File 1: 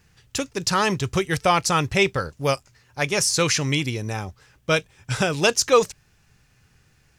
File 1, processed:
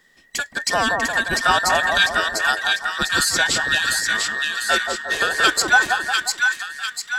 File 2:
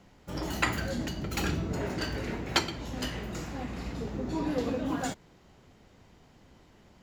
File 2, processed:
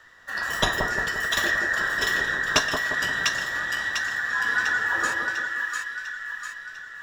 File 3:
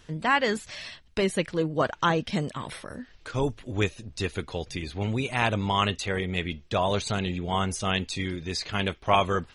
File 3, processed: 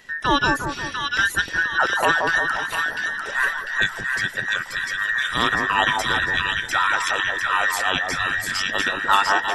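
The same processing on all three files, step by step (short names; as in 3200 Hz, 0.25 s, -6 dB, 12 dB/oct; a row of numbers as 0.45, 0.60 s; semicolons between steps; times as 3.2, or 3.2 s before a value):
band inversion scrambler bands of 2000 Hz; split-band echo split 1200 Hz, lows 0.176 s, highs 0.698 s, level -3 dB; normalise peaks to -3 dBFS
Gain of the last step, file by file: +1.0, +5.0, +4.0 dB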